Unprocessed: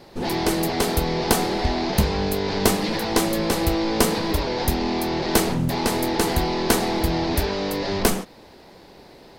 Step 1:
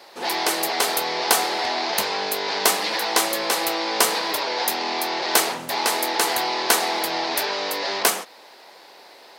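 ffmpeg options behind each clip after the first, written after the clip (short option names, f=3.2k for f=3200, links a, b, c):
-af "highpass=720,acontrast=22"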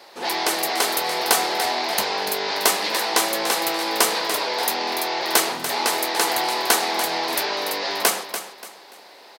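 -af "aecho=1:1:290|580|870:0.316|0.0949|0.0285"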